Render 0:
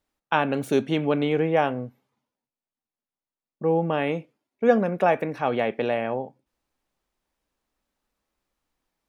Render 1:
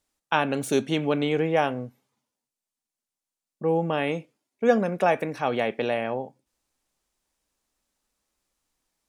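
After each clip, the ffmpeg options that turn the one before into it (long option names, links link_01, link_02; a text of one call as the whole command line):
ffmpeg -i in.wav -af "equalizer=frequency=8000:width_type=o:width=1.8:gain=10.5,volume=-1.5dB" out.wav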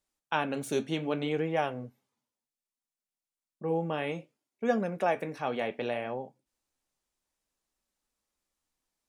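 ffmpeg -i in.wav -af "flanger=delay=5.2:depth=7.6:regen=-62:speed=0.64:shape=sinusoidal,volume=-2.5dB" out.wav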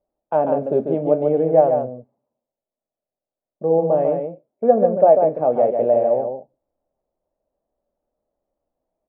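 ffmpeg -i in.wav -af "lowpass=frequency=620:width_type=q:width=4.9,aecho=1:1:143:0.531,volume=6dB" out.wav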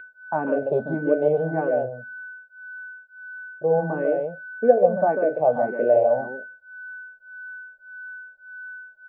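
ffmpeg -i in.wav -filter_complex "[0:a]aeval=exprs='val(0)+0.02*sin(2*PI*1500*n/s)':channel_layout=same,aresample=11025,aresample=44100,asplit=2[link_01][link_02];[link_02]afreqshift=1.7[link_03];[link_01][link_03]amix=inputs=2:normalize=1" out.wav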